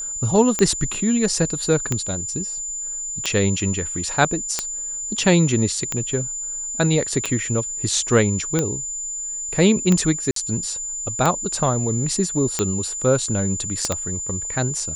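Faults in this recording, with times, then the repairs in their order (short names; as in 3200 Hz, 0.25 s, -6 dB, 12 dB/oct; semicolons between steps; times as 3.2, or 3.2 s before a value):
tick 45 rpm -6 dBFS
tone 7100 Hz -26 dBFS
10.31–10.36 gap 53 ms
13.85 pop -9 dBFS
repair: de-click; notch 7100 Hz, Q 30; interpolate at 10.31, 53 ms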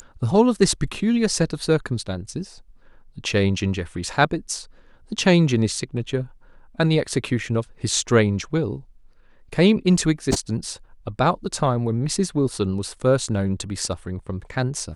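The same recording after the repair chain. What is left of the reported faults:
13.85 pop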